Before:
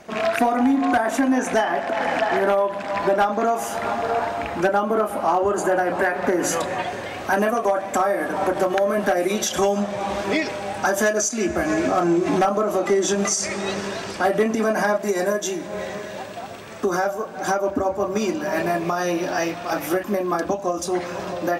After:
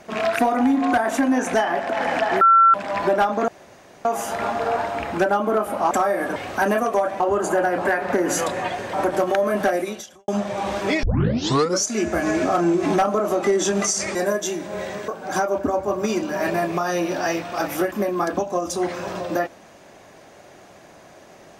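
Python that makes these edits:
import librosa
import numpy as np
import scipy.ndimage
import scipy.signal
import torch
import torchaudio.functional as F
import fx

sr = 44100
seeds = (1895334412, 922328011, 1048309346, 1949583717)

y = fx.edit(x, sr, fx.bleep(start_s=2.41, length_s=0.33, hz=1350.0, db=-9.5),
    fx.insert_room_tone(at_s=3.48, length_s=0.57),
    fx.swap(start_s=5.34, length_s=1.73, other_s=7.91, other_length_s=0.45),
    fx.fade_out_span(start_s=9.15, length_s=0.56, curve='qua'),
    fx.tape_start(start_s=10.46, length_s=0.82),
    fx.cut(start_s=13.58, length_s=1.57),
    fx.cut(start_s=16.08, length_s=1.12), tone=tone)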